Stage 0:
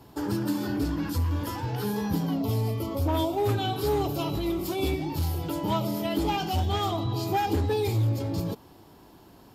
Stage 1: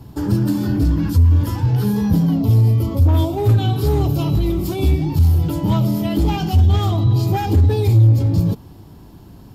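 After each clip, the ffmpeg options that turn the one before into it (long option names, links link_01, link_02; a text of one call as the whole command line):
ffmpeg -i in.wav -af "bass=frequency=250:gain=15,treble=frequency=4000:gain=2,acontrast=68,volume=-4dB" out.wav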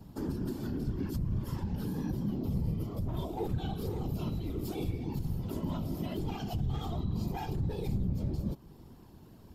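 ffmpeg -i in.wav -af "alimiter=limit=-16dB:level=0:latency=1:release=319,afftfilt=real='hypot(re,im)*cos(2*PI*random(0))':imag='hypot(re,im)*sin(2*PI*random(1))':win_size=512:overlap=0.75,volume=-5.5dB" out.wav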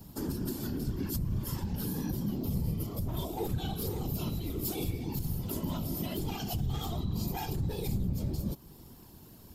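ffmpeg -i in.wav -af "crystalizer=i=3:c=0" out.wav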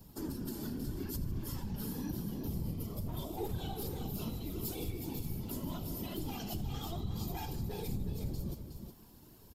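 ffmpeg -i in.wav -filter_complex "[0:a]flanger=delay=1.8:depth=3.2:regen=63:speed=0.84:shape=triangular,asplit=2[link_01][link_02];[link_02]aecho=0:1:81|152|366:0.133|0.112|0.398[link_03];[link_01][link_03]amix=inputs=2:normalize=0,volume=-1dB" out.wav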